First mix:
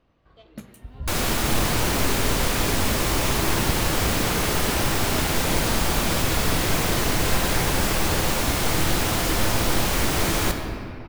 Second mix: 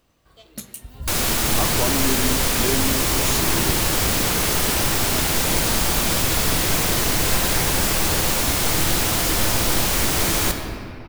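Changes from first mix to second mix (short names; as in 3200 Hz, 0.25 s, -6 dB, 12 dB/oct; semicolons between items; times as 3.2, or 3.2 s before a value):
speech +11.5 dB; first sound: remove air absorption 180 m; master: add high shelf 3700 Hz +7 dB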